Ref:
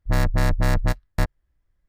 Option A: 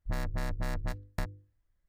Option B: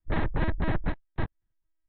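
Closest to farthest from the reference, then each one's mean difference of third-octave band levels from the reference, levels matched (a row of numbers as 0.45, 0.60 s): A, B; 2.0, 7.5 dB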